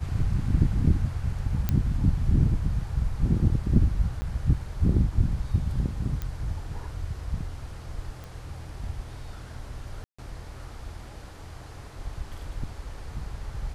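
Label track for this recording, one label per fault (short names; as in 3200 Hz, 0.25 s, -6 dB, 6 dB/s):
1.690000	1.690000	pop -12 dBFS
4.210000	4.220000	gap 10 ms
6.220000	6.220000	pop -19 dBFS
8.240000	8.240000	pop
10.040000	10.190000	gap 0.145 s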